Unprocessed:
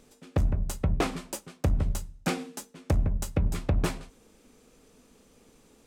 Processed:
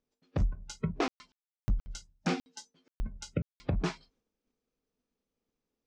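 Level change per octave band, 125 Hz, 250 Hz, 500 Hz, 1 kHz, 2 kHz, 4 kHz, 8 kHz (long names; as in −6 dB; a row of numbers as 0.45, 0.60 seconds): −7.5, −4.0, −5.0, −3.5, −3.5, −3.5, −8.5 decibels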